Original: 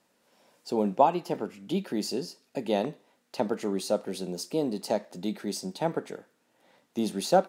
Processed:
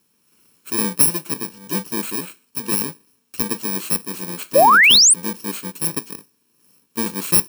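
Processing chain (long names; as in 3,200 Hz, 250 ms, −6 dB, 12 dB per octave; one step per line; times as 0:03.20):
samples in bit-reversed order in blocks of 64 samples
sound drawn into the spectrogram rise, 0:04.55–0:05.14, 500–9,700 Hz −16 dBFS
level +5.5 dB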